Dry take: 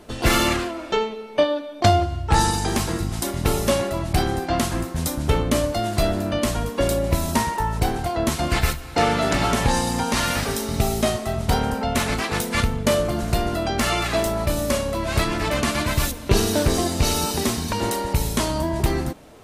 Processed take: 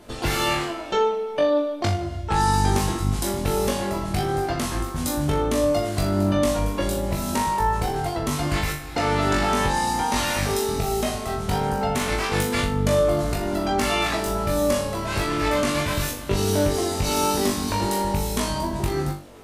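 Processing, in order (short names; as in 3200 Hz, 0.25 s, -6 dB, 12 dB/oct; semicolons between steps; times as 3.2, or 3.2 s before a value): compressor, threshold -20 dBFS, peak gain reduction 9 dB; flutter echo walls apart 3.5 m, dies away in 0.37 s; gain -2 dB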